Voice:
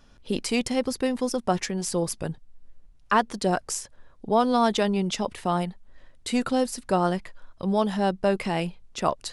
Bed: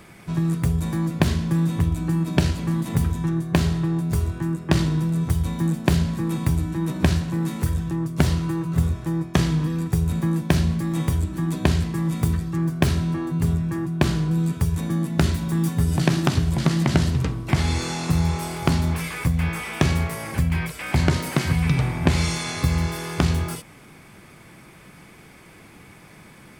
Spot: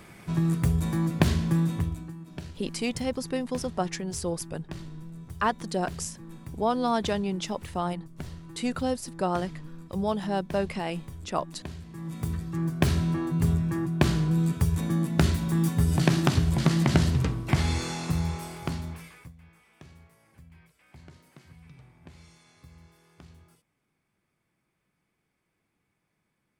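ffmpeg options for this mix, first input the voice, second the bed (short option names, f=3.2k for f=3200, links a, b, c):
-filter_complex "[0:a]adelay=2300,volume=-4.5dB[a];[1:a]volume=15dB,afade=t=out:st=1.53:d=0.61:silence=0.133352,afade=t=in:st=11.83:d=1.2:silence=0.133352,afade=t=out:st=17.34:d=2.01:silence=0.0375837[b];[a][b]amix=inputs=2:normalize=0"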